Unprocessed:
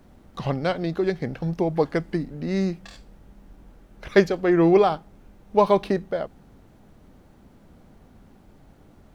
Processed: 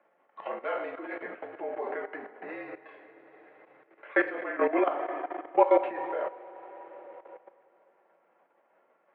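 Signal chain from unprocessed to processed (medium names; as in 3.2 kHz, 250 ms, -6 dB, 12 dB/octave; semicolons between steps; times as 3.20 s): two-slope reverb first 0.24 s, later 4.3 s, from -19 dB, DRR -2 dB; level held to a coarse grid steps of 14 dB; mistuned SSB -51 Hz 540–2500 Hz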